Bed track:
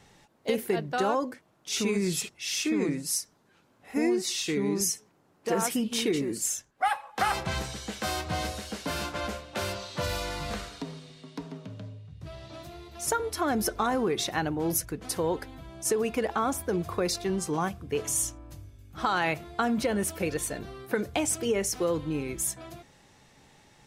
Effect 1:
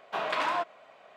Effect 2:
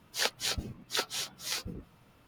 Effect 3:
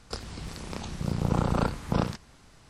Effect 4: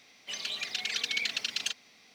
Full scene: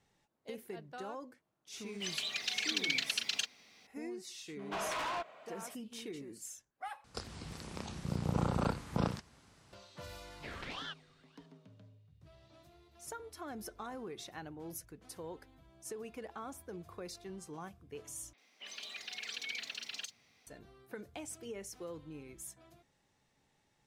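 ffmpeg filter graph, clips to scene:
-filter_complex "[4:a]asplit=2[a][b];[1:a]asplit=2[c][d];[0:a]volume=-17.5dB[e];[c]asoftclip=type=tanh:threshold=-33dB[f];[3:a]highpass=65[g];[d]aeval=exprs='val(0)*sin(2*PI*1500*n/s+1500*0.65/1.8*sin(2*PI*1.8*n/s))':c=same[h];[b]acrossover=split=160|4100[i][j][k];[k]adelay=50[l];[i]adelay=350[m];[m][j][l]amix=inputs=3:normalize=0[n];[e]asplit=3[o][p][q];[o]atrim=end=7.044[r];[g]atrim=end=2.69,asetpts=PTS-STARTPTS,volume=-6.5dB[s];[p]atrim=start=9.726:end=18.334[t];[n]atrim=end=2.14,asetpts=PTS-STARTPTS,volume=-8.5dB[u];[q]atrim=start=20.466[v];[a]atrim=end=2.14,asetpts=PTS-STARTPTS,volume=-2.5dB,afade=t=in:d=0.004:c=hsin,afade=t=out:st=2.136:d=0.004:c=hsin,adelay=1730[w];[f]atrim=end=1.16,asetpts=PTS-STARTPTS,volume=-1.5dB,afade=t=in:d=0.004:c=hsin,afade=t=out:st=1.156:d=0.004:c=hsin,adelay=4590[x];[h]atrim=end=1.16,asetpts=PTS-STARTPTS,volume=-12dB,afade=t=in:d=0.004:c=hsin,afade=t=out:st=1.156:d=0.004:c=hsin,adelay=10300[y];[r][s]acrossfade=d=0.004:c1=hsin:c2=hsin[z];[z][t]acrossfade=d=0.004:c1=hsin:c2=hsin[aa];[aa][u]acrossfade=d=0.004:c1=hsin:c2=hsin[ab];[ab][v]acrossfade=d=0.004:c1=hsin:c2=hsin[ac];[ac][w][x][y]amix=inputs=4:normalize=0"

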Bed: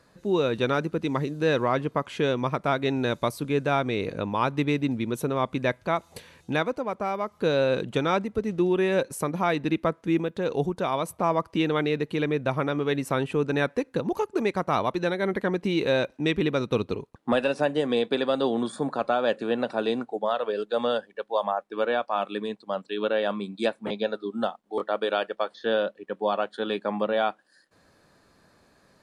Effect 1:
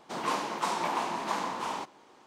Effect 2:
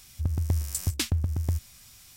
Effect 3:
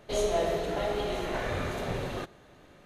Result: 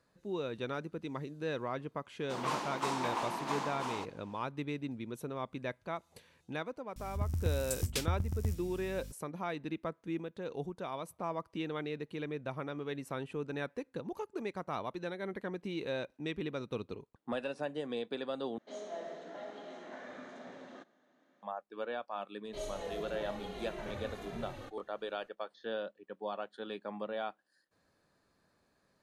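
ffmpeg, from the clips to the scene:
-filter_complex "[3:a]asplit=2[a][b];[0:a]volume=-13.5dB[c];[2:a]aeval=exprs='val(0)+0.0126*(sin(2*PI*50*n/s)+sin(2*PI*2*50*n/s)/2+sin(2*PI*3*50*n/s)/3+sin(2*PI*4*50*n/s)/4+sin(2*PI*5*50*n/s)/5)':c=same[d];[a]highpass=f=210:w=0.5412,highpass=f=210:w=1.3066,equalizer=f=250:t=q:w=4:g=8,equalizer=f=410:t=q:w=4:g=-6,equalizer=f=620:t=q:w=4:g=3,equalizer=f=1.7k:t=q:w=4:g=4,equalizer=f=2.6k:t=q:w=4:g=-7,equalizer=f=4.4k:t=q:w=4:g=-4,lowpass=f=6.8k:w=0.5412,lowpass=f=6.8k:w=1.3066[e];[b]asplit=2[f][g];[g]adelay=2.5,afreqshift=-1.6[h];[f][h]amix=inputs=2:normalize=1[i];[c]asplit=2[j][k];[j]atrim=end=18.584[l];[e]atrim=end=2.85,asetpts=PTS-STARTPTS,volume=-15.5dB[m];[k]atrim=start=21.426[n];[1:a]atrim=end=2.26,asetpts=PTS-STARTPTS,volume=-5dB,afade=t=in:d=0.004:c=hsin,afade=t=out:st=2.256:d=0.004:c=hsin,adelay=2200[o];[d]atrim=end=2.16,asetpts=PTS-STARTPTS,volume=-7dB,afade=t=in:d=0.004:c=hsin,afade=t=out:st=2.156:d=0.004:c=hsin,adelay=6960[p];[i]atrim=end=2.85,asetpts=PTS-STARTPTS,volume=-9dB,afade=t=in:d=0.004:c=hsin,afade=t=out:st=2.846:d=0.004:c=hsin,adelay=989604S[q];[l][m]acrossfade=d=0.004:c1=hsin:c2=hsin[r];[r][n]acrossfade=d=0.004:c1=hsin:c2=hsin[s];[s][o][p][q]amix=inputs=4:normalize=0"

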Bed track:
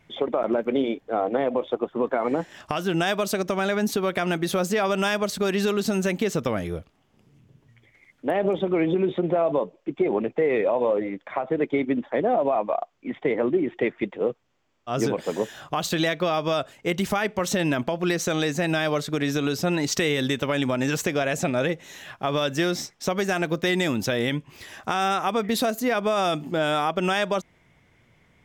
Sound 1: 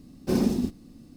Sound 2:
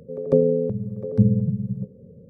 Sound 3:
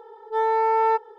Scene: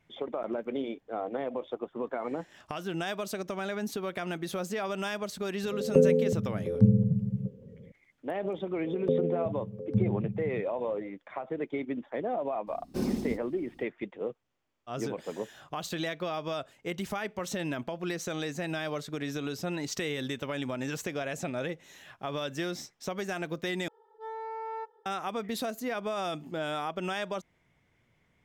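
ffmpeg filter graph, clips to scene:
-filter_complex "[2:a]asplit=2[a][b];[0:a]volume=-10dB,asplit=2[c][d];[c]atrim=end=23.884[e];[3:a]atrim=end=1.18,asetpts=PTS-STARTPTS,volume=-17.5dB[f];[d]atrim=start=25.056[g];[a]atrim=end=2.29,asetpts=PTS-STARTPTS,volume=-3.5dB,afade=t=in:d=0.004:c=hsin,afade=t=out:st=2.286:d=0.004:c=hsin,adelay=5630[h];[b]atrim=end=2.29,asetpts=PTS-STARTPTS,volume=-10dB,afade=t=in:d=0.004:c=hsin,afade=t=out:st=2.286:d=0.004:c=hsin,adelay=8760[i];[1:a]atrim=end=1.16,asetpts=PTS-STARTPTS,volume=-7dB,afade=t=in:d=0.004:c=hsin,afade=t=out:st=1.156:d=0.004:c=hsin,adelay=12670[j];[e][f]acrossfade=d=0.004:c1=hsin:c2=hsin[k];[k][g]acrossfade=d=0.004:c1=hsin:c2=hsin[l];[l][h][i][j]amix=inputs=4:normalize=0"

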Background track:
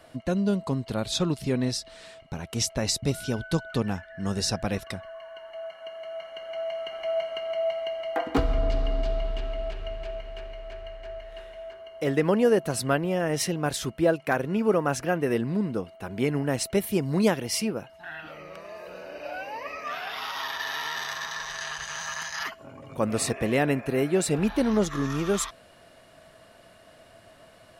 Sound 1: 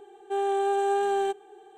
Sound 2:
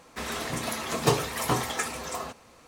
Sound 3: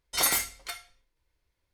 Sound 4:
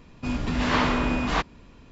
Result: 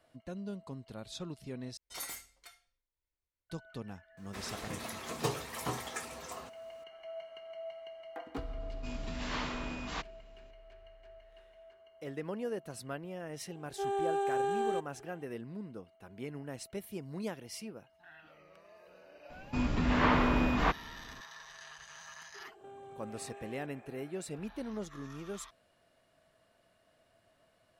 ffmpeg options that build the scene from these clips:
-filter_complex "[4:a]asplit=2[a][b];[1:a]asplit=2[c][d];[0:a]volume=-16.5dB[e];[3:a]equalizer=f=7.3k:t=o:w=0.3:g=2.5[f];[2:a]acrusher=bits=10:mix=0:aa=0.000001[g];[a]highshelf=f=3.1k:g=9[h];[b]acrossover=split=2700[i][j];[j]acompressor=threshold=-44dB:ratio=4:attack=1:release=60[k];[i][k]amix=inputs=2:normalize=0[l];[d]acompressor=threshold=-41dB:ratio=6:attack=3.2:release=140:knee=1:detection=peak[m];[e]asplit=2[n][o];[n]atrim=end=1.774[p];[f]atrim=end=1.73,asetpts=PTS-STARTPTS,volume=-17.5dB[q];[o]atrim=start=3.496[r];[g]atrim=end=2.67,asetpts=PTS-STARTPTS,volume=-10.5dB,afade=t=in:d=0.004:c=hsin,afade=t=out:st=2.666:d=0.004:c=hsin,adelay=183897S[s];[h]atrim=end=1.91,asetpts=PTS-STARTPTS,volume=-16dB,afade=t=in:d=0.004:c=hsin,afade=t=out:st=1.906:d=0.004:c=hsin,adelay=8600[t];[c]atrim=end=1.77,asetpts=PTS-STARTPTS,volume=-7dB,afade=t=in:d=0.004:c=hsin,afade=t=out:st=1.766:d=0.004:c=hsin,adelay=594468S[u];[l]atrim=end=1.91,asetpts=PTS-STARTPTS,volume=-3.5dB,afade=t=in:d=0.004:c=hsin,afade=t=out:st=1.906:d=0.004:c=hsin,adelay=19300[v];[m]atrim=end=1.77,asetpts=PTS-STARTPTS,volume=-8.5dB,afade=t=in:d=0.004:c=hsin,afade=t=out:st=1.766:d=0.004:c=hsin,adelay=22340[w];[p][q]acrossfade=d=0.004:c1=hsin:c2=hsin[x];[x][r]acrossfade=d=0.004:c1=hsin:c2=hsin[y];[y][s][t][u][v][w]amix=inputs=6:normalize=0"

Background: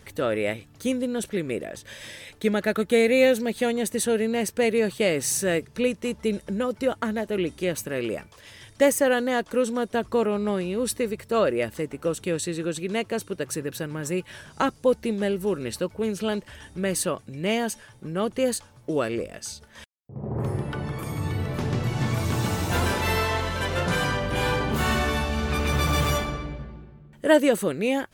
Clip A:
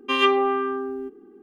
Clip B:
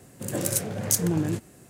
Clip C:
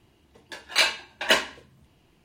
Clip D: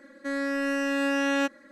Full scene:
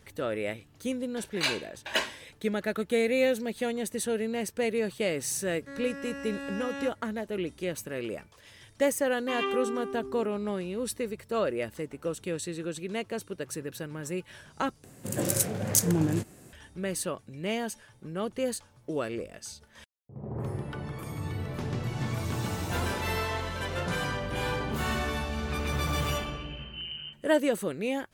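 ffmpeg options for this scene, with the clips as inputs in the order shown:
-filter_complex "[2:a]asplit=2[a][b];[0:a]volume=-6.5dB[c];[1:a]aecho=1:1:94:0.398[d];[b]lowpass=f=2.7k:t=q:w=0.5098,lowpass=f=2.7k:t=q:w=0.6013,lowpass=f=2.7k:t=q:w=0.9,lowpass=f=2.7k:t=q:w=2.563,afreqshift=-3200[e];[c]asplit=2[f][g];[f]atrim=end=14.844[h];[a]atrim=end=1.69,asetpts=PTS-STARTPTS,volume=-0.5dB[i];[g]atrim=start=16.526[j];[3:a]atrim=end=2.24,asetpts=PTS-STARTPTS,volume=-8dB,afade=t=in:d=0.004:c=hsin,afade=t=out:st=2.236:d=0.004:c=hsin,adelay=650[k];[4:a]atrim=end=1.71,asetpts=PTS-STARTPTS,volume=-12dB,afade=t=in:d=0.004:c=hsin,afade=t=out:st=1.706:d=0.004:c=hsin,adelay=5420[l];[d]atrim=end=1.42,asetpts=PTS-STARTPTS,volume=-12.5dB,afade=t=in:d=0.004:c=hsin,afade=t=out:st=1.416:d=0.004:c=hsin,adelay=9190[m];[e]atrim=end=1.69,asetpts=PTS-STARTPTS,volume=-15dB,afade=t=in:d=0.004:c=hsin,afade=t=out:st=1.686:d=0.004:c=hsin,adelay=25740[n];[h][i]acrossfade=d=0.004:c1=hsin:c2=hsin[o];[o][j]acrossfade=d=0.004:c1=hsin:c2=hsin[p];[p][k][l][m][n]amix=inputs=5:normalize=0"

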